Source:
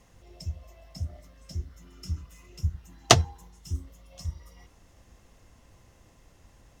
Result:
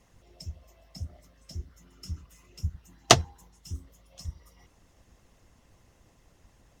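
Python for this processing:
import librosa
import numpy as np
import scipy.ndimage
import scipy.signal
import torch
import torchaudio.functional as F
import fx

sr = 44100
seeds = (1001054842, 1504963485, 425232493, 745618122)

y = fx.hpss(x, sr, part='harmonic', gain_db=-8)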